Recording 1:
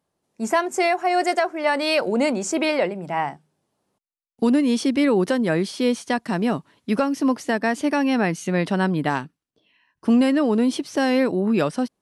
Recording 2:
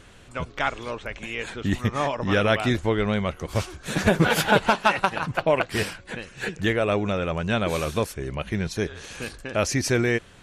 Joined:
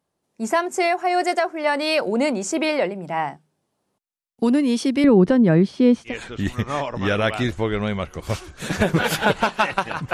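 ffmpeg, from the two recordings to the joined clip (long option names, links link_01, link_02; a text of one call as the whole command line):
ffmpeg -i cue0.wav -i cue1.wav -filter_complex "[0:a]asettb=1/sr,asplit=3[link_01][link_02][link_03];[link_01]atrim=end=5.044[link_04];[link_02]atrim=start=5.04:end=6.14,asetpts=PTS-STARTPTS,afade=type=in:duration=0.004:curve=qsin,afade=type=out:start_time=1.096:duration=0.004:curve=qsin,aemphasis=mode=reproduction:type=riaa[link_05];[link_03]atrim=start=6.136[link_06];[link_04][link_05]acrossfade=duration=0.004:curve1=hsin:curve2=qsin[link_07];[link_07][link_06]acrossfade=duration=0.004:curve1=qsin:curve2=hsin,apad=whole_dur=10.13,atrim=end=10.13,atrim=end=6.14,asetpts=PTS-STARTPTS[link_08];[1:a]atrim=start=1.3:end=5.39,asetpts=PTS-STARTPTS[link_09];[link_08][link_09]acrossfade=duration=0.1:curve1=tri:curve2=tri" out.wav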